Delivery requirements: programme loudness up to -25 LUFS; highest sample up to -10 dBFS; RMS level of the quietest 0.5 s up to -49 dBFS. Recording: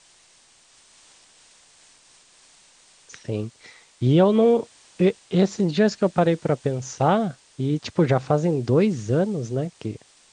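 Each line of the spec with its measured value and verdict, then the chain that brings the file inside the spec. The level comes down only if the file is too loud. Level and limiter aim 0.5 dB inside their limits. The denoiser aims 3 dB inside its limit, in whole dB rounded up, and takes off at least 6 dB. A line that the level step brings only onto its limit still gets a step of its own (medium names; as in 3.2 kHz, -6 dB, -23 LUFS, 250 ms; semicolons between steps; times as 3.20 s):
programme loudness -22.0 LUFS: fail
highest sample -6.0 dBFS: fail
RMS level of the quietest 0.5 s -56 dBFS: pass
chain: trim -3.5 dB; peak limiter -10.5 dBFS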